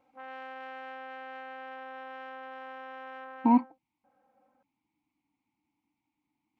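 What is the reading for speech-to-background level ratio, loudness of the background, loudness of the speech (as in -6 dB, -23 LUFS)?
17.0 dB, -43.5 LUFS, -26.5 LUFS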